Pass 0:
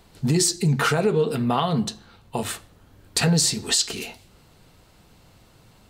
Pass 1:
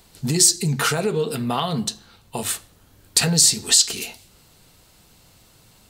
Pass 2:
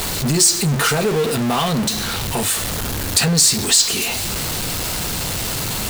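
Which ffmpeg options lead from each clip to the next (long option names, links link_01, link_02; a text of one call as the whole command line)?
ffmpeg -i in.wav -af "highshelf=frequency=3700:gain=11.5,volume=-2dB" out.wav
ffmpeg -i in.wav -af "aeval=exprs='val(0)+0.5*0.15*sgn(val(0))':channel_layout=same,volume=-1dB" out.wav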